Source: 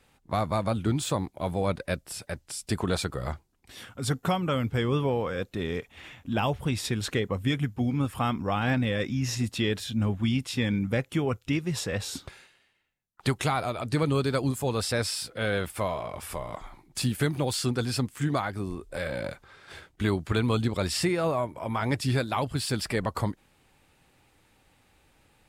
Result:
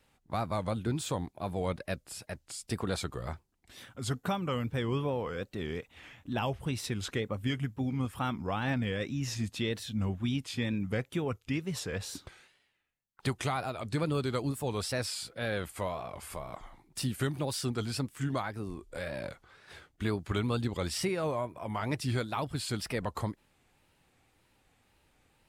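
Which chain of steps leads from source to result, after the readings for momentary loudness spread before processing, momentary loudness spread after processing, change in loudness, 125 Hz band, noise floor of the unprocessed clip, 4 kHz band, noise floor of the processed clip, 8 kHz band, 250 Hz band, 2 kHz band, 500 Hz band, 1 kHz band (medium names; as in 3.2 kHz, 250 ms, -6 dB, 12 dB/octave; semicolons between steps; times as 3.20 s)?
10 LU, 10 LU, -5.5 dB, -5.5 dB, -66 dBFS, -5.5 dB, -71 dBFS, -5.5 dB, -5.5 dB, -5.5 dB, -5.5 dB, -5.5 dB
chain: wow and flutter 120 cents; trim -5.5 dB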